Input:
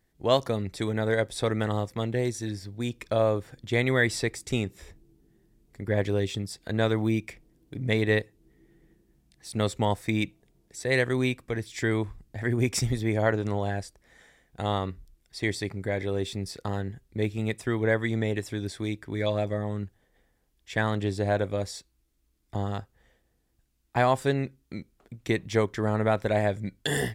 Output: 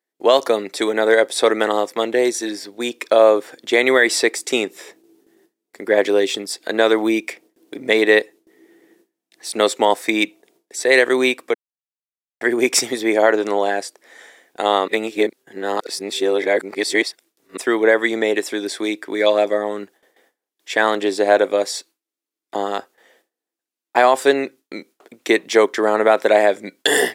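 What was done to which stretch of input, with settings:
11.54–12.41 s: mute
14.88–17.57 s: reverse
whole clip: high-pass 320 Hz 24 dB/octave; gate with hold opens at -59 dBFS; loudness maximiser +14 dB; trim -1 dB

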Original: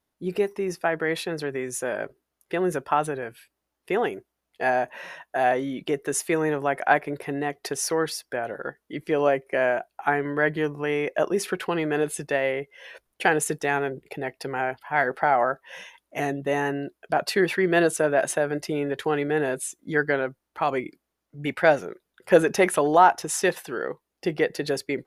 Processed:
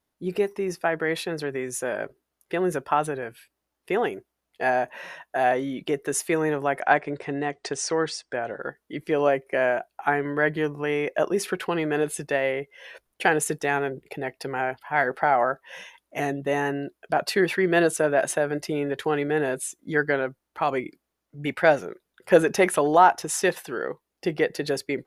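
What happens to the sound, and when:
6.81–8.61 s: steep low-pass 9.1 kHz 96 dB/octave

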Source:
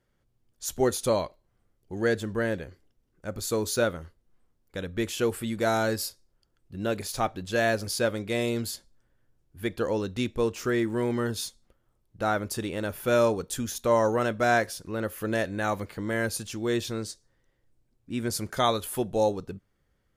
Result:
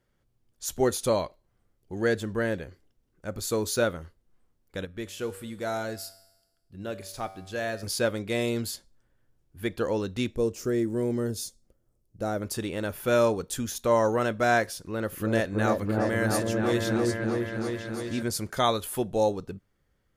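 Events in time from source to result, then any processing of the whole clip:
4.85–7.83 s: feedback comb 96 Hz, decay 1 s
10.36–12.42 s: high-order bell 1.8 kHz -10 dB 2.6 oct
14.68–18.23 s: delay with an opening low-pass 327 ms, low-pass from 750 Hz, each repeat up 1 oct, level 0 dB

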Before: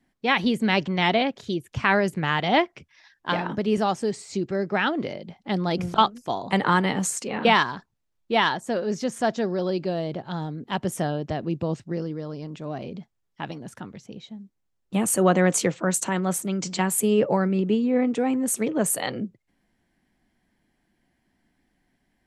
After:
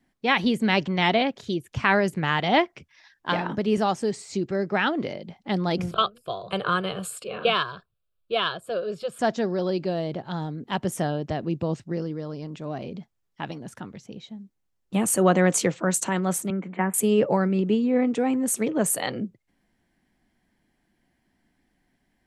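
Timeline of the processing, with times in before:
5.91–9.19 s: static phaser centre 1.3 kHz, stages 8
16.50–16.94 s: elliptic band-pass 190–2100 Hz

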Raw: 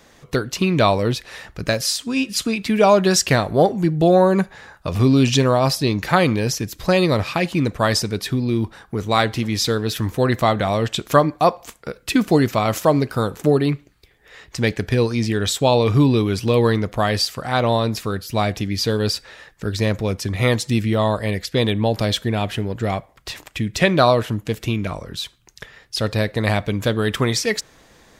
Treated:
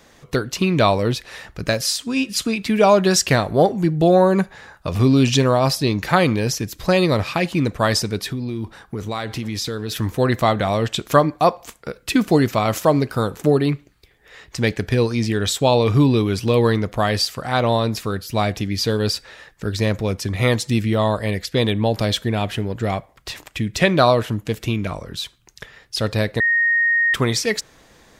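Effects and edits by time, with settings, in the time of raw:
8.24–9.92 s: compression 5:1, threshold -22 dBFS
26.40–27.14 s: bleep 1.86 kHz -14 dBFS

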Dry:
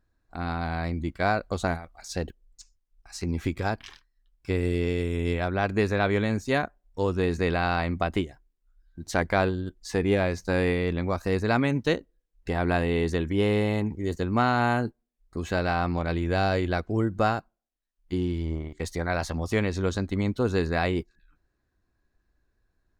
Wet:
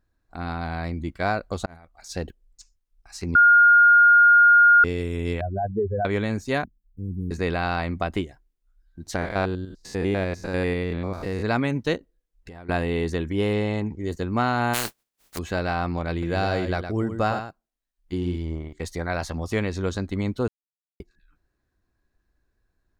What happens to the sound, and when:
1.66–2.11 s: fade in
3.35–4.84 s: bleep 1.42 kHz -10.5 dBFS
5.41–6.05 s: spectral contrast enhancement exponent 3.6
6.64–7.31 s: inverse Chebyshev band-stop 900–4500 Hz, stop band 70 dB
9.16–11.43 s: spectrogram pixelated in time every 100 ms
11.97–12.69 s: compression, threshold -39 dBFS
13.53–14.08 s: low-pass 8.2 kHz 24 dB/octave
14.73–15.37 s: spectral contrast reduction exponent 0.23
16.11–18.36 s: delay 112 ms -8.5 dB
20.48–21.00 s: mute

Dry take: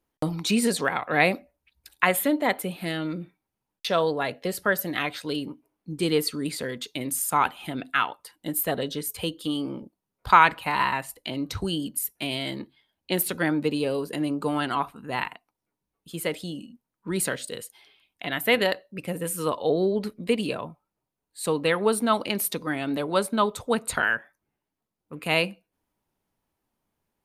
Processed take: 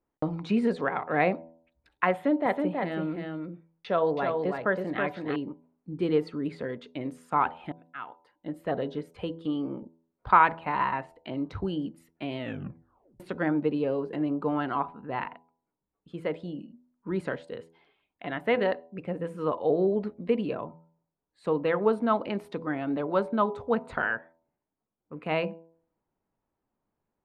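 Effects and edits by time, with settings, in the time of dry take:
2.13–5.36 s: delay 324 ms -4.5 dB
7.72–8.75 s: fade in
12.36 s: tape stop 0.84 s
whole clip: Bessel low-pass 1.2 kHz, order 2; bass shelf 180 Hz -4 dB; de-hum 82.35 Hz, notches 12

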